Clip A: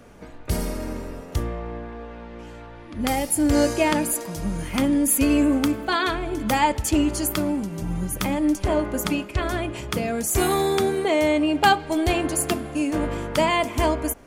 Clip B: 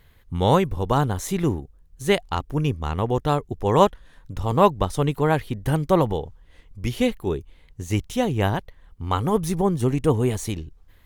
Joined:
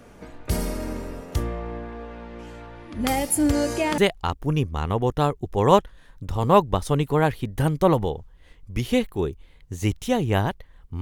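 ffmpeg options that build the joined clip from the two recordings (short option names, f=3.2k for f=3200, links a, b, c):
-filter_complex "[0:a]asettb=1/sr,asplit=3[a][b][c];[a]atrim=end=3.514[d];[b]atrim=start=3.51:end=3.98,asetpts=PTS-STARTPTS,afade=t=in:d=0.004:c=qsin,afade=t=out:st=0.466:d=0.004:c=qsin,acompressor=threshold=-25dB:ratio=1.5:attack=3.2:release=140:knee=1:detection=peak[e];[c]atrim=start=3.976[f];[d][e]acrossfade=d=0.004:c1=hsin:c2=qsin[g];[g][f]acrossfade=d=0.004:c1=qsin:c2=hsin,apad=whole_dur=11.01,atrim=end=11.01,atrim=end=3.982[h];[1:a]atrim=start=2.058:end=9.09[i];[h][i]acrossfade=d=0.004:c1=hsin:c2=hsin"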